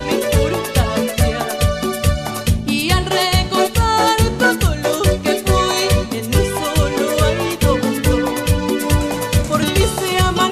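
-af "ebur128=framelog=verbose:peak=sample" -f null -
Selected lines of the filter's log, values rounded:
Integrated loudness:
  I:         -16.6 LUFS
  Threshold: -26.6 LUFS
Loudness range:
  LRA:         1.6 LU
  Threshold: -36.5 LUFS
  LRA low:   -17.2 LUFS
  LRA high:  -15.5 LUFS
Sample peak:
  Peak:       -1.8 dBFS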